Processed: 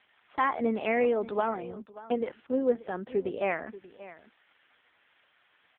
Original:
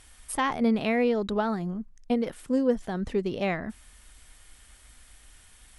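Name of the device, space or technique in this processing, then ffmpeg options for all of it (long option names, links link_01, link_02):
satellite phone: -filter_complex "[0:a]asplit=3[link_01][link_02][link_03];[link_01]afade=type=out:start_time=1.29:duration=0.02[link_04];[link_02]highpass=190,afade=type=in:start_time=1.29:duration=0.02,afade=type=out:start_time=2.19:duration=0.02[link_05];[link_03]afade=type=in:start_time=2.19:duration=0.02[link_06];[link_04][link_05][link_06]amix=inputs=3:normalize=0,highpass=350,lowpass=3300,aecho=1:1:582:0.141,volume=1.5dB" -ar 8000 -c:a libopencore_amrnb -b:a 5150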